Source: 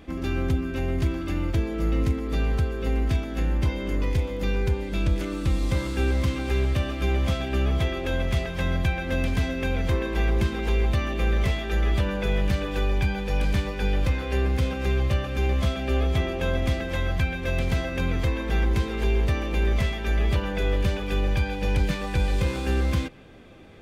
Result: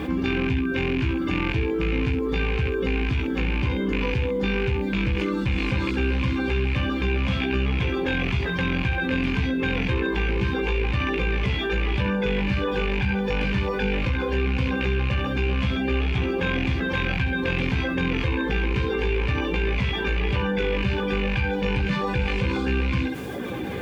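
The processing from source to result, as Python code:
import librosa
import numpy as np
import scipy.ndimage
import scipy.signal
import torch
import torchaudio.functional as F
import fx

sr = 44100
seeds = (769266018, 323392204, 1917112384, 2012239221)

y = fx.rattle_buzz(x, sr, strikes_db=-24.0, level_db=-18.0)
y = scipy.signal.sosfilt(scipy.signal.butter(2, 57.0, 'highpass', fs=sr, output='sos'), y)
y = fx.dereverb_blind(y, sr, rt60_s=0.81)
y = scipy.signal.sosfilt(scipy.signal.butter(2, 3600.0, 'lowpass', fs=sr, output='sos'), y)
y = fx.quant_dither(y, sr, seeds[0], bits=12, dither='none')
y = fx.notch_comb(y, sr, f0_hz=650.0)
y = fx.room_early_taps(y, sr, ms=(16, 66), db=(-5.0, -10.5))
y = fx.env_flatten(y, sr, amount_pct=70)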